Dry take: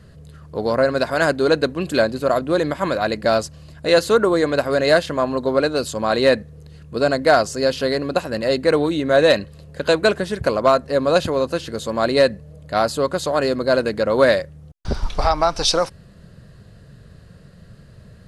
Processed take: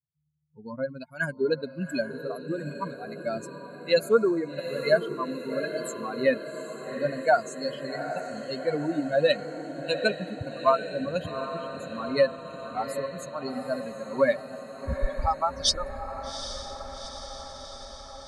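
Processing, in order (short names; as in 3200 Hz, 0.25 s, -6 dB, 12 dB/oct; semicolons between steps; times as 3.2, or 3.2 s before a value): per-bin expansion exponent 3; diffused feedback echo 0.793 s, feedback 68%, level -10 dB; gain -1.5 dB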